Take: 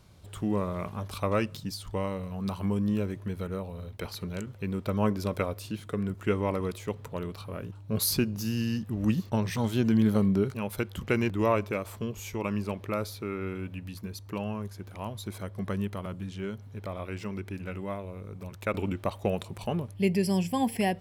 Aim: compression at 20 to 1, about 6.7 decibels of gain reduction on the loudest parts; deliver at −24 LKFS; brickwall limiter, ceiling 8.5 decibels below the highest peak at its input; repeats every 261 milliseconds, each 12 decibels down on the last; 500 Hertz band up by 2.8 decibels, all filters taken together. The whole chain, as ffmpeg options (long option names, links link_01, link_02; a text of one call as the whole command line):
ffmpeg -i in.wav -af "equalizer=frequency=500:width_type=o:gain=3.5,acompressor=threshold=-25dB:ratio=20,alimiter=limit=-22dB:level=0:latency=1,aecho=1:1:261|522|783:0.251|0.0628|0.0157,volume=10.5dB" out.wav